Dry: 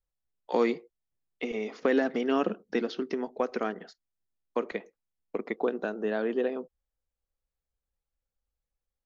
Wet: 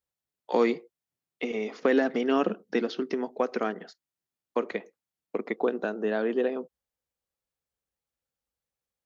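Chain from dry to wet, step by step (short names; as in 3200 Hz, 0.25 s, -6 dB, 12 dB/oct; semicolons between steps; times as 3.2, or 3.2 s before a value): HPF 110 Hz 12 dB/oct; gain +2 dB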